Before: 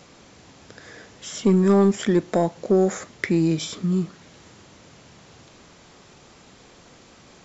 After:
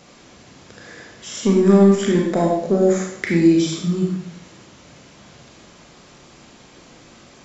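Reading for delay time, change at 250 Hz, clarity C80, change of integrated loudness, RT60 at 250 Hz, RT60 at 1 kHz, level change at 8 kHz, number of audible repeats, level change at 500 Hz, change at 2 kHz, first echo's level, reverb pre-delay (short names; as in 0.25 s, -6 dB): none, +4.5 dB, 6.0 dB, +4.0 dB, 0.80 s, 0.70 s, n/a, none, +4.0 dB, +3.5 dB, none, 29 ms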